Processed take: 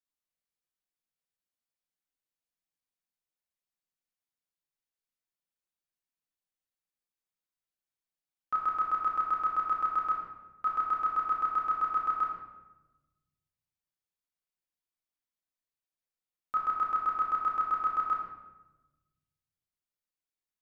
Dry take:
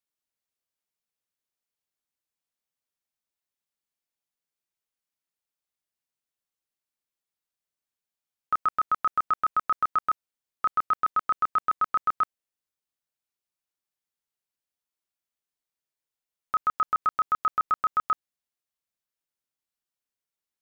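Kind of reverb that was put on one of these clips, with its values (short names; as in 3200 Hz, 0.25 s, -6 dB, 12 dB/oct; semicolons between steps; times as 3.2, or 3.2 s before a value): shoebox room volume 610 m³, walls mixed, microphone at 2 m; gain -10 dB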